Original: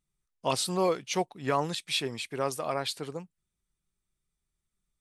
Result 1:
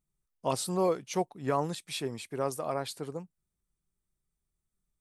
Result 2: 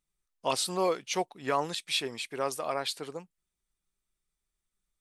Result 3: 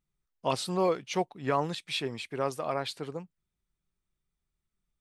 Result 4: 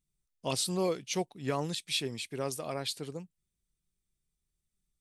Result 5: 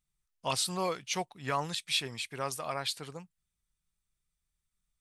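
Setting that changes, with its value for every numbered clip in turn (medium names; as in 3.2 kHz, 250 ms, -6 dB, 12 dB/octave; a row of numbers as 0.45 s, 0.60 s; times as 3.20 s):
peaking EQ, frequency: 3.1 kHz, 110 Hz, 12 kHz, 1.1 kHz, 360 Hz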